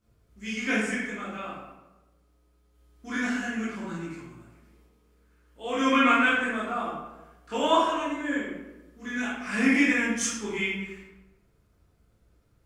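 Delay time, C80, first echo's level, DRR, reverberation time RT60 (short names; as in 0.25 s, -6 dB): none, 3.0 dB, none, -10.0 dB, 1.0 s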